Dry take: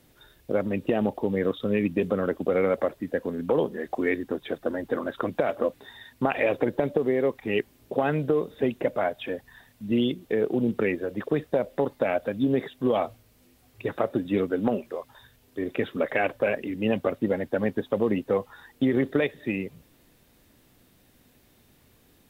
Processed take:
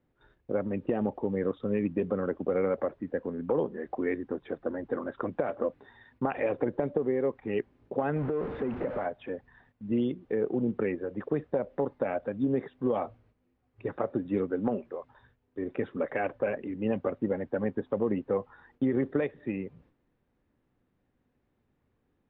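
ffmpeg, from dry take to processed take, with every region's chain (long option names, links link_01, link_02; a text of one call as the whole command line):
ffmpeg -i in.wav -filter_complex "[0:a]asettb=1/sr,asplit=3[link_01][link_02][link_03];[link_01]atrim=end=8.164[link_04];[link_02]atrim=start=8.16:end=9.06,asetpts=PTS-STARTPTS,afade=type=in:duration=0.004:curve=qsin,afade=type=out:start_time=0.896:duration=0.004:curve=qsin,aeval=exprs='val(0)+0.5*0.0473*sgn(val(0))':channel_layout=same,lowpass=2700,acompressor=threshold=-22dB:ratio=6:attack=3.2:release=140:knee=1:detection=peak[link_05];[link_03]atrim=start=9.056[link_06];[link_04][link_05]acrossfade=duration=0.004:curve1=hsin:curve2=qsin[link_07];[link_07][link_06]acrossfade=duration=0.004:curve1=qsin:curve2=hsin,agate=range=-9dB:threshold=-56dB:ratio=16:detection=peak,lowpass=1600,bandreject=frequency=650:width=12,volume=-4dB" out.wav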